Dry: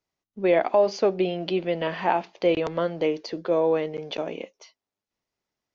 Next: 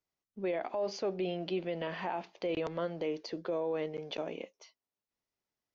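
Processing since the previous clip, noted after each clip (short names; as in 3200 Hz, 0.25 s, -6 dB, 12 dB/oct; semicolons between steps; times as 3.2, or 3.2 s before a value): limiter -18.5 dBFS, peak gain reduction 9 dB; gain -7 dB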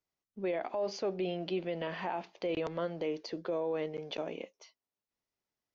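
nothing audible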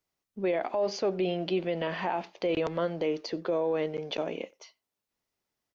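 speakerphone echo 90 ms, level -24 dB; gain +5.5 dB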